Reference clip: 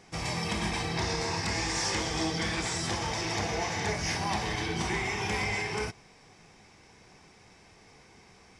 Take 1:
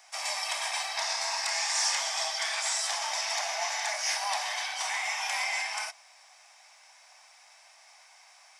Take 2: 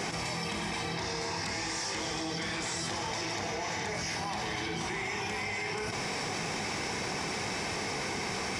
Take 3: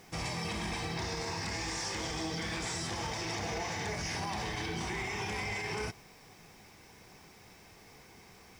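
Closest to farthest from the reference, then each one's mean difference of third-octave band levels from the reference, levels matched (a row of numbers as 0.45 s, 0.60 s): 3, 2, 1; 3.5 dB, 8.5 dB, 14.5 dB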